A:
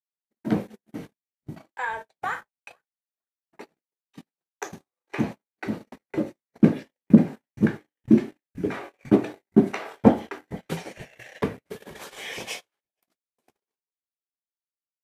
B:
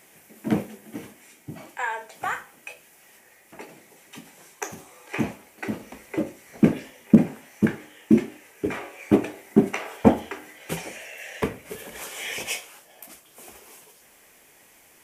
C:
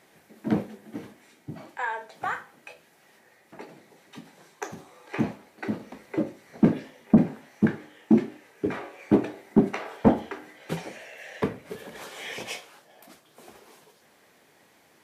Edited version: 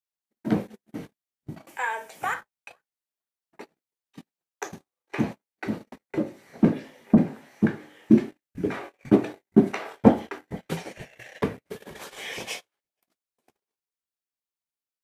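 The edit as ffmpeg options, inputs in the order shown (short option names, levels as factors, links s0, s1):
-filter_complex "[0:a]asplit=3[s0][s1][s2];[s0]atrim=end=1.672[s3];[1:a]atrim=start=1.668:end=2.342[s4];[s1]atrim=start=2.338:end=6.182[s5];[2:a]atrim=start=6.178:end=8.102[s6];[s2]atrim=start=8.098[s7];[s3][s4]acrossfade=d=0.004:c1=hsin:c2=hsin[s8];[s8][s5]acrossfade=d=0.004:c1=hsin:c2=hsin[s9];[s9][s6]acrossfade=d=0.004:c1=hsin:c2=hsin[s10];[s10][s7]acrossfade=d=0.004:c1=hsin:c2=hsin"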